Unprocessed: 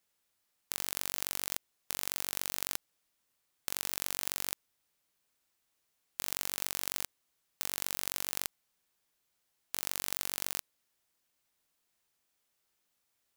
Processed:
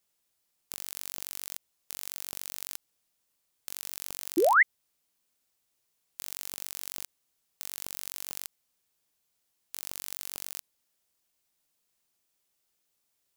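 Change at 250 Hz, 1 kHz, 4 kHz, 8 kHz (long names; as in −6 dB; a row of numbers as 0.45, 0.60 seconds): +11.0, +13.0, −4.0, −2.5 decibels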